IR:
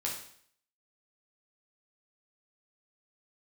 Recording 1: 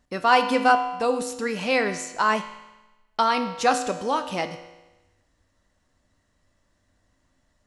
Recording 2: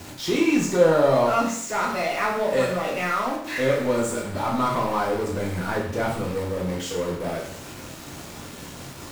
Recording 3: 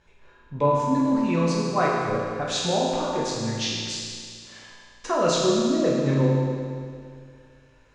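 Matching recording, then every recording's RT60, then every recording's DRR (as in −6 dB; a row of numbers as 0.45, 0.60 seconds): 2; 1.1, 0.60, 2.2 seconds; 7.0, −3.0, −5.5 decibels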